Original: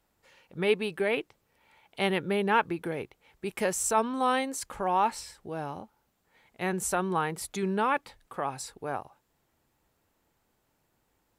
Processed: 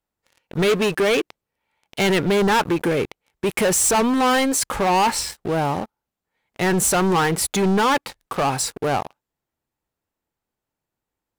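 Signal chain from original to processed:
leveller curve on the samples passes 5
level −1.5 dB

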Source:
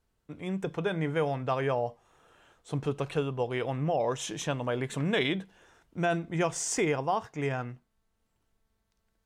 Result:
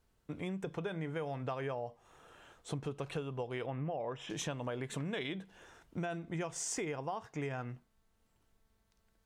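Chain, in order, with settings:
downward compressor 6 to 1, threshold −38 dBFS, peak gain reduction 14.5 dB
0:03.66–0:04.30: Savitzky-Golay smoothing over 25 samples
level +2 dB

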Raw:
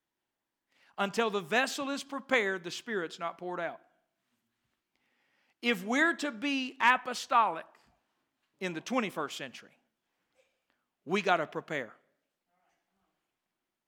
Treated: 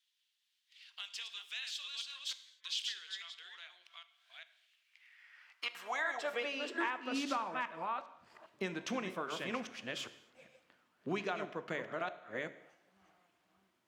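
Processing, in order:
delay that plays each chunk backwards 403 ms, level −4.5 dB
0:02.16–0:05.75: gate with flip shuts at −19 dBFS, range −39 dB
low-shelf EQ 110 Hz −11.5 dB
downward compressor 6 to 1, threshold −44 dBFS, peak gain reduction 23.5 dB
high-shelf EQ 8,200 Hz −10.5 dB
notch filter 820 Hz, Q 12
hum removal 70.35 Hz, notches 10
high-pass filter sweep 3,400 Hz → 78 Hz, 0:04.52–0:08.45
reverb whose tail is shaped and stops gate 300 ms falling, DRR 12 dB
level +8 dB

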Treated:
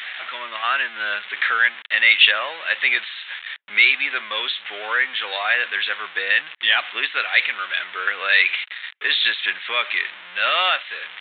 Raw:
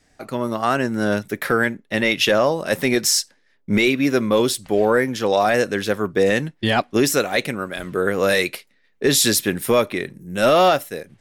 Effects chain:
converter with a step at zero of −25 dBFS
flat-topped band-pass 2,900 Hz, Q 0.82
downsampling to 8,000 Hz
level +6.5 dB

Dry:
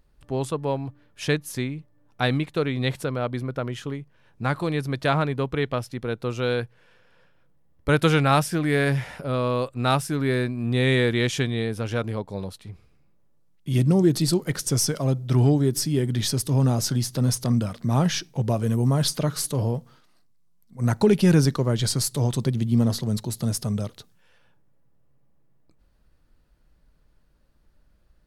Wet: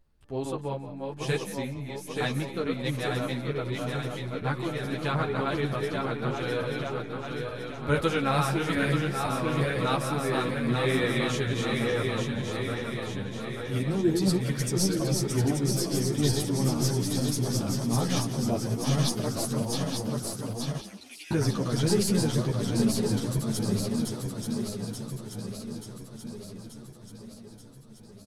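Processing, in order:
feedback delay that plays each chunk backwards 441 ms, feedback 78%, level −3 dB
0:20.80–0:21.31: four-pole ladder high-pass 2,200 Hz, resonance 50%
echo with shifted repeats 176 ms, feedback 37%, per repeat +53 Hz, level −15 dB
string-ensemble chorus
level −3.5 dB

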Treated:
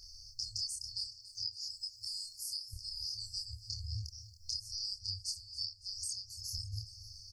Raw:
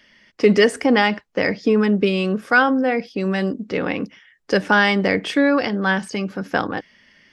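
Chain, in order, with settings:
0:01.04–0:02.74: first-order pre-emphasis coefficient 0.9
brick-wall band-stop 110–4,300 Hz
0:05.41–0:06.45: bass and treble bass −7 dB, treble −3 dB
downward compressor 6 to 1, threshold −50 dBFS, peak gain reduction 21.5 dB
multi-voice chorus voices 4, 0.71 Hz, delay 27 ms, depth 2.7 ms
repeating echo 279 ms, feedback 52%, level −15.5 dB
level +15.5 dB

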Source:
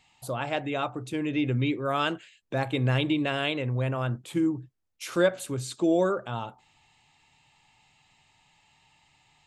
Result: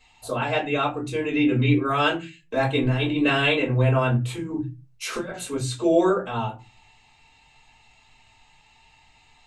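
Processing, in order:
mains-hum notches 60/120 Hz
0:02.83–0:05.31: compressor whose output falls as the input rises −27 dBFS, ratio −0.5
convolution reverb RT60 0.25 s, pre-delay 3 ms, DRR −5 dB
level −2 dB

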